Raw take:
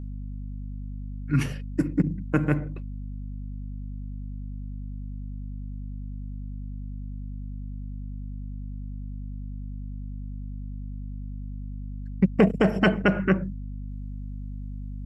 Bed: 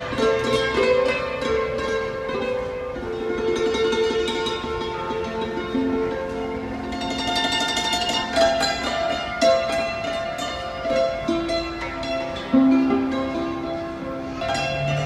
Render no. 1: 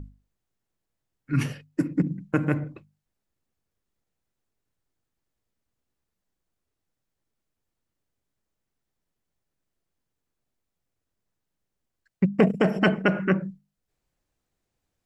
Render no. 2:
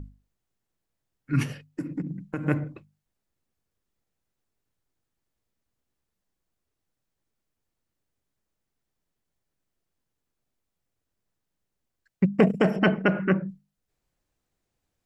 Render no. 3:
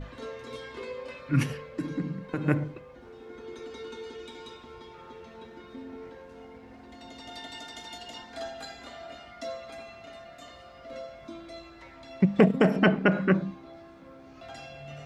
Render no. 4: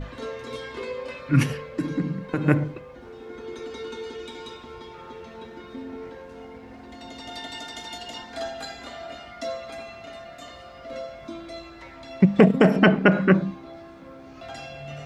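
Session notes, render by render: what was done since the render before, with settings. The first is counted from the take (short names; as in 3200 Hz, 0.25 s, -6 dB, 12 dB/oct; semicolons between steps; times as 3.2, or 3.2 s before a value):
notches 50/100/150/200/250 Hz
1.43–2.46 compressor 2.5:1, threshold -30 dBFS; 12.76–13.49 air absorption 120 m
add bed -20 dB
gain +5.5 dB; limiter -3 dBFS, peak gain reduction 1.5 dB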